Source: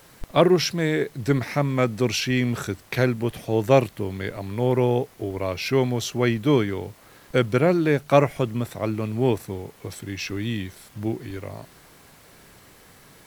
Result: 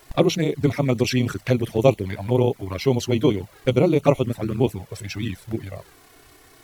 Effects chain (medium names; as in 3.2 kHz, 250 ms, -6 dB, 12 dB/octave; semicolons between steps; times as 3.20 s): touch-sensitive flanger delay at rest 3 ms, full sweep at -18.5 dBFS; granular stretch 0.5×, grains 62 ms; trim +4 dB